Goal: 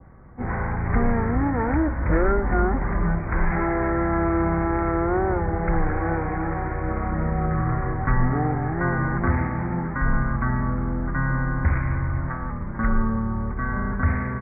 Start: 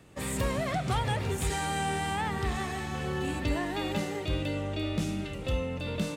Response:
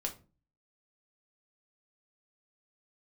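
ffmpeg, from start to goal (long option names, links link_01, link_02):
-af "aresample=11025,aresample=44100,asetrate=18846,aresample=44100,adynamicequalizer=threshold=0.00282:dfrequency=2300:dqfactor=0.73:tfrequency=2300:tqfactor=0.73:attack=5:release=100:ratio=0.375:range=2.5:mode=boostabove:tftype=bell,volume=8.5dB"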